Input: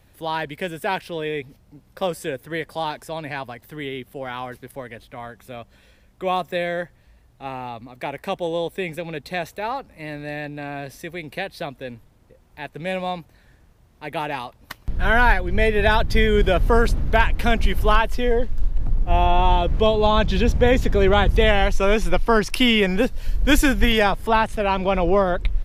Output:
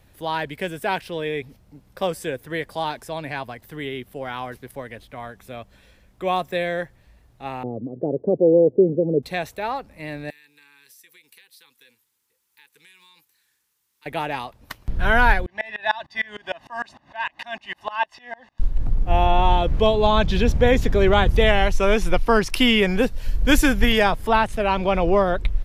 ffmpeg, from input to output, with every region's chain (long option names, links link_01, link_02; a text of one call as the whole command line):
ffmpeg -i in.wav -filter_complex "[0:a]asettb=1/sr,asplit=3[link_01][link_02][link_03];[link_01]atrim=end=7.634[link_04];[link_02]atrim=start=7.63:end=9.23,asetpts=PTS-STARTPTS,afade=type=in:duration=0.004:curve=qsin,afade=type=out:start_time=1.596:duration=0.004:curve=qsin,equalizer=frequency=400:width_type=o:width=1.2:gain=7,acontrast=81,asuperpass=centerf=240:order=8:qfactor=0.56[link_05];[link_03]atrim=start=9.226[link_06];[link_04][link_05]acrossfade=duration=0.004:curve1=hsin:curve2=qsin[link_07];[link_07][link_06]acrossfade=duration=0.004:curve1=qsin:curve2=hsin,asettb=1/sr,asplit=3[link_08][link_09][link_10];[link_08]atrim=end=10.304[link_11];[link_09]atrim=start=10.3:end=14.06,asetpts=PTS-STARTPTS,afade=type=in:duration=0.004:curve=qsin,afade=type=out:start_time=3.756:duration=0.004:curve=qsin,aderivative,acompressor=threshold=-47dB:ratio=5:attack=3.2:release=140:knee=1:detection=peak,asuperstop=centerf=640:order=20:qfactor=2.3[link_12];[link_10]atrim=start=14.056[link_13];[link_11][link_12]acrossfade=duration=0.004:curve1=hsin:curve2=qsin[link_14];[link_14][link_13]acrossfade=duration=0.004:curve1=qsin:curve2=hsin,asettb=1/sr,asplit=3[link_15][link_16][link_17];[link_15]atrim=end=15.464[link_18];[link_16]atrim=start=15.46:end=18.6,asetpts=PTS-STARTPTS,afade=type=in:duration=0.004:curve=qsin,afade=type=out:start_time=3.136:duration=0.004:curve=qsin,highpass=560,lowpass=5000,aecho=1:1:1.1:0.94,atrim=end_sample=138474,aeval=exprs='val(0)*pow(10,-27*if(lt(mod(-6.6*n/s,1),2*abs(-6.6)/1000),1-mod(-6.6*n/s,1)/(2*abs(-6.6)/1000),(mod(-6.6*n/s,1)-2*abs(-6.6)/1000)/(1-2*abs(-6.6)/1000))/20)':channel_layout=same[link_19];[link_17]atrim=start=18.596[link_20];[link_18][link_19]acrossfade=duration=0.004:curve1=hsin:curve2=qsin[link_21];[link_21][link_20]acrossfade=duration=0.004:curve1=qsin:curve2=hsin" out.wav